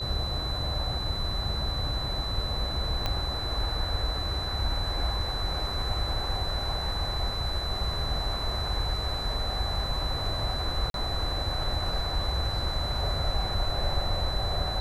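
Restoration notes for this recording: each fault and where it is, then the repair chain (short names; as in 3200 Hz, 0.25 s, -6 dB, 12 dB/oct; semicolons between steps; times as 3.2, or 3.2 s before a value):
tone 4000 Hz -33 dBFS
3.06 pop -14 dBFS
10.9–10.94 gap 42 ms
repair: de-click; notch 4000 Hz, Q 30; interpolate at 10.9, 42 ms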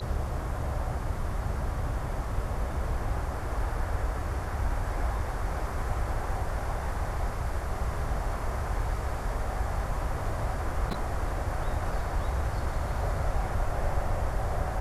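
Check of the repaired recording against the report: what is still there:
3.06 pop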